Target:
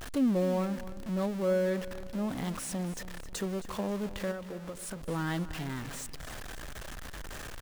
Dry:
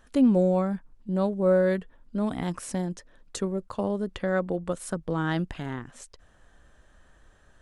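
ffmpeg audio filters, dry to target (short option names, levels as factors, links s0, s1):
-filter_complex "[0:a]aeval=exprs='val(0)+0.5*0.0398*sgn(val(0))':c=same,asettb=1/sr,asplit=3[s0][s1][s2];[s0]atrim=end=4.314[s3];[s1]atrim=start=4.31:end=5.02,asetpts=PTS-STARTPTS,afade=t=in:d=0.004:c=qsin,afade=t=out:st=0.706:d=0.004:c=qsin,acompressor=threshold=0.0355:ratio=10[s4];[s2]atrim=start=5.016[s5];[s3][s4]acrossfade=d=0.004:c1=hsin:c2=qsin[s6];[s6][s5]acrossfade=d=0.004:c1=qsin:c2=hsin,asplit=2[s7][s8];[s8]aecho=0:1:267|534|801|1068:0.178|0.0694|0.027|0.0105[s9];[s7][s9]amix=inputs=2:normalize=0,volume=0.398"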